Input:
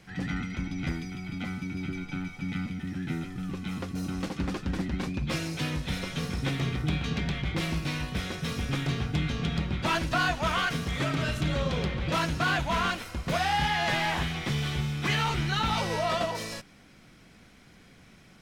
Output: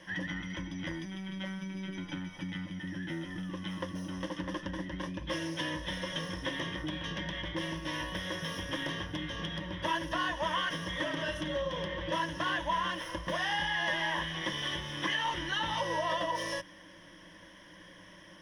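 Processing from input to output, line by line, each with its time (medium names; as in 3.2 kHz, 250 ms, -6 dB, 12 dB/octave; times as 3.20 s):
1.05–1.98 s: robot voice 191 Hz
7.93–10.12 s: peaking EQ 13 kHz +9.5 dB 0.31 oct
whole clip: rippled EQ curve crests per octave 1.2, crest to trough 16 dB; compression 5:1, threshold -31 dBFS; tone controls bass -12 dB, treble -8 dB; trim +3 dB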